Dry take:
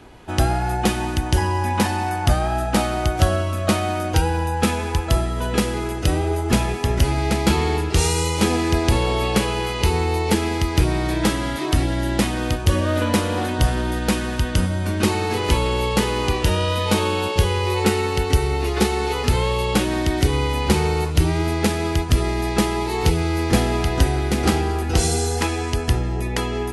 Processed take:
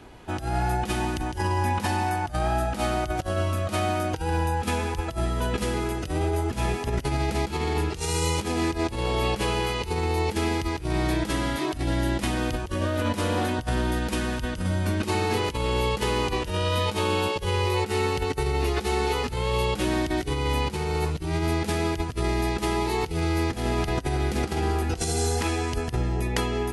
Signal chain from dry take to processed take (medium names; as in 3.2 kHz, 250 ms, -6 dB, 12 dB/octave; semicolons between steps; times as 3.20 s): compressor with a negative ratio -21 dBFS, ratio -0.5; trim -4 dB